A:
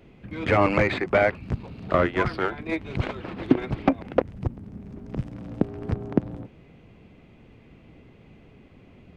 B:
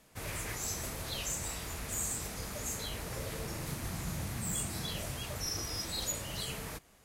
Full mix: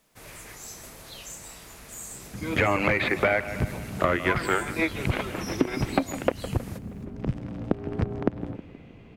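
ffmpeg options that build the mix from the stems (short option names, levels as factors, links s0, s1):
-filter_complex "[0:a]adynamicequalizer=threshold=0.0126:dfrequency=2300:dqfactor=0.91:tfrequency=2300:tqfactor=0.91:attack=5:release=100:ratio=0.375:range=3:mode=boostabove:tftype=bell,adelay=2100,volume=1.26,asplit=2[s0][s1];[s1]volume=0.133[s2];[1:a]equalizer=f=78:t=o:w=1.2:g=-8.5,acrusher=bits=10:mix=0:aa=0.000001,volume=0.631,asplit=2[s3][s4];[s4]volume=0.0668[s5];[s2][s5]amix=inputs=2:normalize=0,aecho=0:1:158|316|474|632|790|948|1106:1|0.51|0.26|0.133|0.0677|0.0345|0.0176[s6];[s0][s3][s6]amix=inputs=3:normalize=0,acompressor=threshold=0.112:ratio=6"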